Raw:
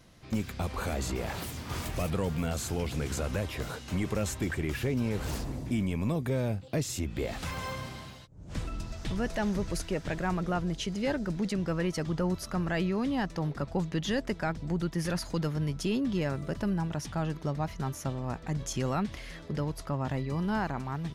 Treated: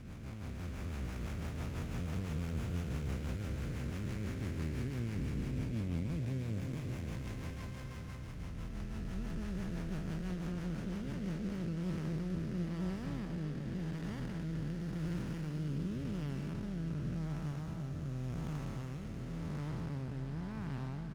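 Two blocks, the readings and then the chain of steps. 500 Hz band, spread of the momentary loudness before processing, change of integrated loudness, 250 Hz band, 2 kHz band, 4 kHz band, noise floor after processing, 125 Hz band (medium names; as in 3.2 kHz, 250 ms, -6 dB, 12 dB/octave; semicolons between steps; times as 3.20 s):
-13.5 dB, 6 LU, -7.5 dB, -7.5 dB, -12.0 dB, -13.0 dB, -44 dBFS, -4.5 dB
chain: spectral blur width 1180 ms; low-pass 11 kHz; peaking EQ 600 Hz -8 dB 2.1 oct; rotary cabinet horn 6 Hz, later 0.9 Hz, at 11.08 s; delay 493 ms -10.5 dB; sliding maximum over 9 samples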